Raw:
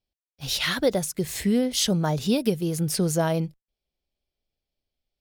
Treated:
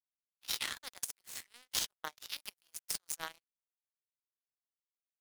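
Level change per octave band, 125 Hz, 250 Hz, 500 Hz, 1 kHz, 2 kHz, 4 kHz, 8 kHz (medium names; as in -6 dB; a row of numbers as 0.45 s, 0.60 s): -38.5 dB, -38.5 dB, -32.0 dB, -15.5 dB, -12.0 dB, -11.5 dB, -9.5 dB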